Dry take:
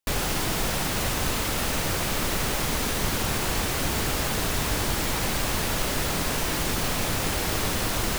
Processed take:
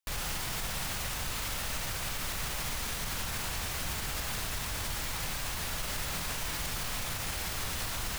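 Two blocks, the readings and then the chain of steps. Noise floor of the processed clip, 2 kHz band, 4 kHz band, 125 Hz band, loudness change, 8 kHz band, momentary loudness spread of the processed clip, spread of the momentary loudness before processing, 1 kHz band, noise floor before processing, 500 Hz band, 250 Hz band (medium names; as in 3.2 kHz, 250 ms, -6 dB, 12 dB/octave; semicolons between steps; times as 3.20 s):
-36 dBFS, -8.0 dB, -7.5 dB, -10.0 dB, -8.5 dB, -7.0 dB, 0 LU, 0 LU, -10.0 dB, -27 dBFS, -14.5 dB, -15.0 dB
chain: peaking EQ 330 Hz -10.5 dB 1.9 oct; peak limiter -21.5 dBFS, peak gain reduction 8 dB; flutter echo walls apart 7.6 m, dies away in 0.23 s; trim -4 dB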